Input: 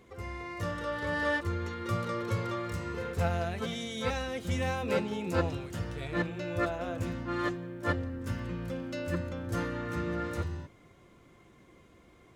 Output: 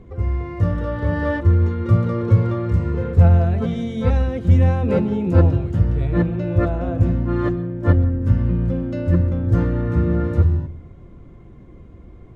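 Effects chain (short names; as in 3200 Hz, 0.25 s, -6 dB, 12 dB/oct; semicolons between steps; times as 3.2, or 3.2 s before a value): tilt -4.5 dB/oct; reverb RT60 0.35 s, pre-delay 0.118 s, DRR 16 dB; gain +4.5 dB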